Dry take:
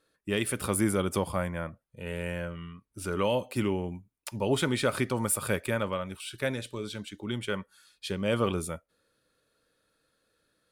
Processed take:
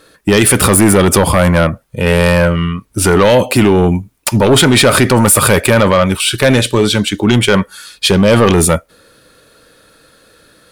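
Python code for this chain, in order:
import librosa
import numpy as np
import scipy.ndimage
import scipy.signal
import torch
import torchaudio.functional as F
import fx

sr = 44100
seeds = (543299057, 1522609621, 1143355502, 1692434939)

p1 = fx.over_compress(x, sr, threshold_db=-33.0, ratio=-1.0)
p2 = x + (p1 * librosa.db_to_amplitude(0.5))
p3 = fx.fold_sine(p2, sr, drive_db=9, ceiling_db=-8.5)
y = p3 * librosa.db_to_amplitude(5.5)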